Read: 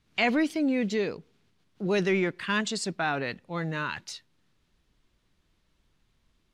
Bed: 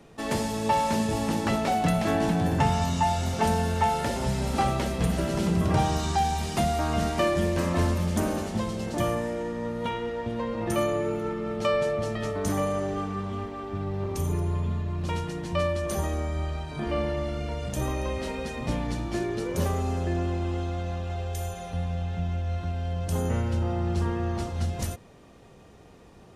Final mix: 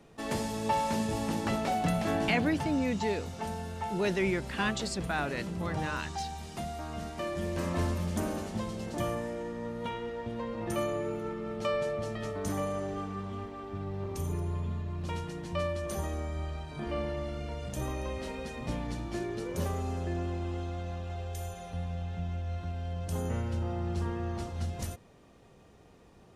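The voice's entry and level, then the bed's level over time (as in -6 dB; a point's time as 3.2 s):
2.10 s, -4.0 dB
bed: 2.19 s -5 dB
2.62 s -12.5 dB
7.16 s -12.5 dB
7.65 s -6 dB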